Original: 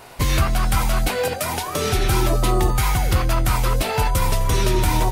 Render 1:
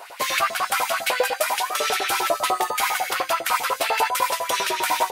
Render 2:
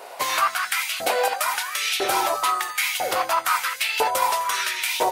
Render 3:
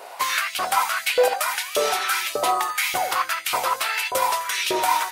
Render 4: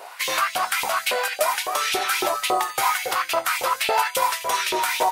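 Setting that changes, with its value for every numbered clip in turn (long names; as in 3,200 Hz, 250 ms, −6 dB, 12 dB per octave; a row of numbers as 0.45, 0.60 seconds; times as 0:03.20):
auto-filter high-pass, speed: 10, 1, 1.7, 3.6 Hertz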